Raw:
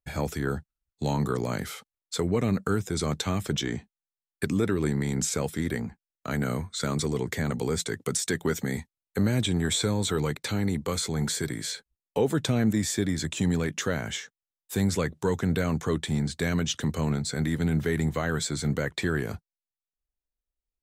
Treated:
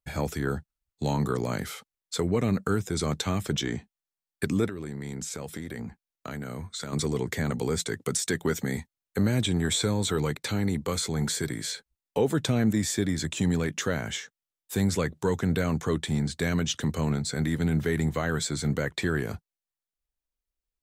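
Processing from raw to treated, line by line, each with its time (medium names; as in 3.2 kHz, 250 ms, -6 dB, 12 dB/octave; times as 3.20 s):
4.66–6.93 s: compression 12:1, threshold -31 dBFS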